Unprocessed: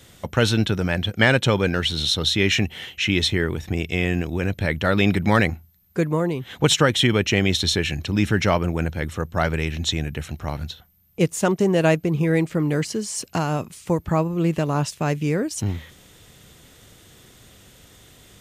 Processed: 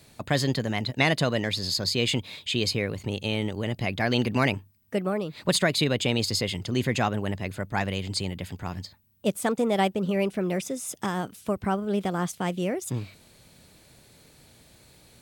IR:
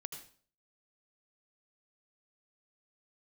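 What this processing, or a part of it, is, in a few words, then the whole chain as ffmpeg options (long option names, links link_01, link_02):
nightcore: -af "asetrate=53361,aresample=44100,volume=-5.5dB"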